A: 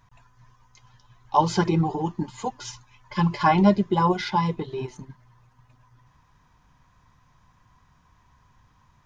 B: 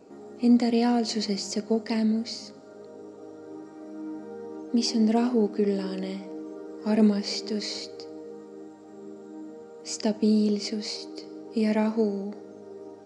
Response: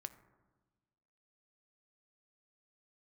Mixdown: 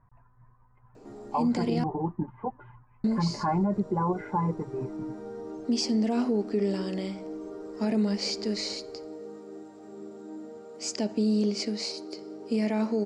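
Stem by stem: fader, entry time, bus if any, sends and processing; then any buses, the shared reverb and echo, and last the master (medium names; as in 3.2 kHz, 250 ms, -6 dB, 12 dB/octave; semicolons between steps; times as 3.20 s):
-2.5 dB, 0.00 s, no send, Bessel low-pass 1.1 kHz, order 8
0.0 dB, 0.95 s, muted 1.84–3.04 s, no send, none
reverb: none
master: peak limiter -18.5 dBFS, peak gain reduction 10 dB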